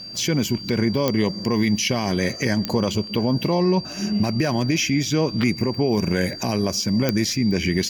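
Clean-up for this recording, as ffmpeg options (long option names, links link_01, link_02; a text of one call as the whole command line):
ffmpeg -i in.wav -af "adeclick=threshold=4,bandreject=frequency=4700:width=30" out.wav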